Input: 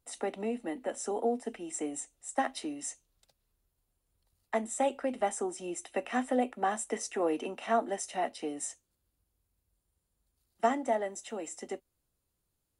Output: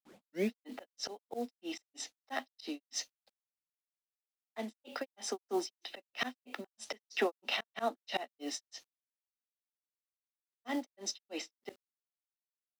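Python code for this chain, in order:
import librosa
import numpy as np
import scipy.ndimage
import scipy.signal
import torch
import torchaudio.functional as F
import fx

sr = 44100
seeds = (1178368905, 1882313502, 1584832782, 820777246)

y = fx.tape_start_head(x, sr, length_s=0.59)
y = fx.env_lowpass(y, sr, base_hz=1700.0, full_db=-30.0)
y = scipy.signal.sosfilt(scipy.signal.cheby1(4, 1.0, 210.0, 'highpass', fs=sr, output='sos'), y)
y = fx.peak_eq(y, sr, hz=4300.0, db=13.0, octaves=1.6)
y = fx.auto_swell(y, sr, attack_ms=212.0)
y = fx.high_shelf_res(y, sr, hz=6400.0, db=-8.0, q=3.0)
y = fx.quant_companded(y, sr, bits=6)
y = fx.granulator(y, sr, seeds[0], grain_ms=223.0, per_s=3.1, spray_ms=100.0, spread_st=0)
y = F.gain(torch.from_numpy(y), 5.0).numpy()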